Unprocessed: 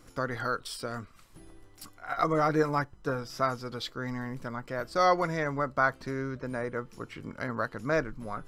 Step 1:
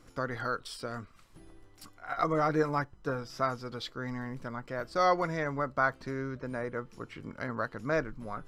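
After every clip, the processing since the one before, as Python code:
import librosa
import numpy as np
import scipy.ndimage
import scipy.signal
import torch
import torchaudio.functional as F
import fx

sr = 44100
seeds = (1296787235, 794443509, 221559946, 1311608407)

y = fx.high_shelf(x, sr, hz=9300.0, db=-8.0)
y = F.gain(torch.from_numpy(y), -2.0).numpy()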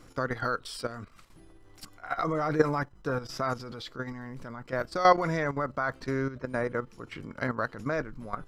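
y = fx.level_steps(x, sr, step_db=12)
y = F.gain(torch.from_numpy(y), 7.5).numpy()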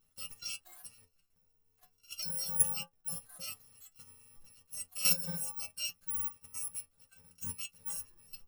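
y = fx.bit_reversed(x, sr, seeds[0], block=128)
y = fx.stiff_resonator(y, sr, f0_hz=86.0, decay_s=0.23, stiffness=0.002)
y = fx.noise_reduce_blind(y, sr, reduce_db=13)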